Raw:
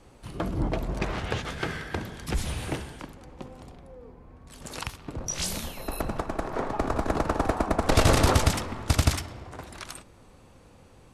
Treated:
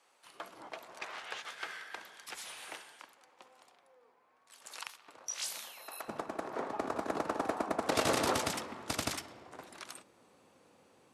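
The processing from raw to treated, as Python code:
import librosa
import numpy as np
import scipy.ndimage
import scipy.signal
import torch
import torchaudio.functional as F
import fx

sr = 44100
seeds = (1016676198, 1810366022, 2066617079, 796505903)

y = fx.highpass(x, sr, hz=fx.steps((0.0, 900.0), (6.08, 250.0)), slope=12)
y = F.gain(torch.from_numpy(y), -7.0).numpy()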